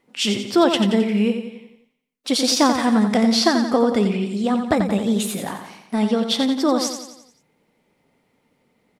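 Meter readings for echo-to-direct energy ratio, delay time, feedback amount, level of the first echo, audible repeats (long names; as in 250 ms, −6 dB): −6.5 dB, 88 ms, 50%, −7.5 dB, 5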